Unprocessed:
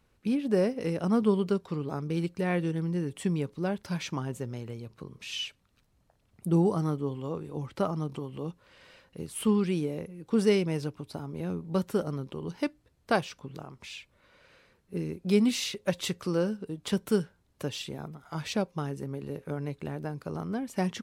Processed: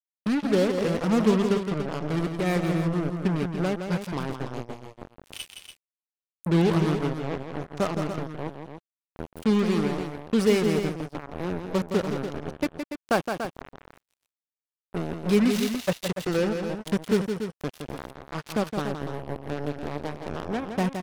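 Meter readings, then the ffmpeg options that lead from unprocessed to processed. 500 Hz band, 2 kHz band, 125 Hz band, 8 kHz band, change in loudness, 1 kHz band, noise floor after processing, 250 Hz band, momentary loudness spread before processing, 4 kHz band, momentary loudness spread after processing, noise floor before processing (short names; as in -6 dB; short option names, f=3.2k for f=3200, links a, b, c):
+4.0 dB, +5.5 dB, +3.0 dB, +1.0 dB, +4.0 dB, +5.5 dB, under -85 dBFS, +3.5 dB, 14 LU, +1.5 dB, 15 LU, -69 dBFS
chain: -af "highshelf=f=4.1k:g=-5.5,areverse,acompressor=mode=upward:threshold=-39dB:ratio=2.5,areverse,acrusher=bits=4:mix=0:aa=0.5,aecho=1:1:166.2|288.6:0.447|0.355,volume=2.5dB"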